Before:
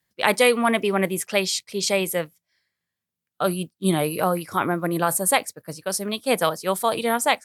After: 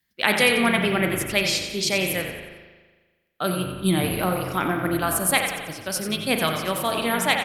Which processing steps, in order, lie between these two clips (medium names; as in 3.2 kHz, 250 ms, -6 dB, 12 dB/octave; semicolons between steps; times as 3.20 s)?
graphic EQ 125/500/1000/8000 Hz -7/-8/-7/-7 dB; frequency-shifting echo 90 ms, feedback 47%, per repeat -46 Hz, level -9 dB; spring tank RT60 1.4 s, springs 38 ms, chirp 80 ms, DRR 5 dB; trim +3.5 dB